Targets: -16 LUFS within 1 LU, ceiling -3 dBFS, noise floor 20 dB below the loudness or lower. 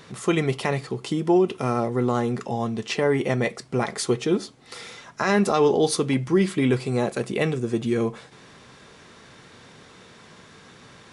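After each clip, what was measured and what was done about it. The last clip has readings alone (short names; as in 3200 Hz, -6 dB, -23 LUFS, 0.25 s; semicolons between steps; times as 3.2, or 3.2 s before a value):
loudness -23.5 LUFS; peak -8.5 dBFS; loudness target -16.0 LUFS
-> gain +7.5 dB; limiter -3 dBFS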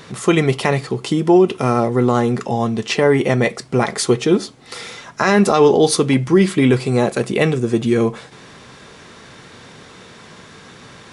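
loudness -16.5 LUFS; peak -3.0 dBFS; noise floor -42 dBFS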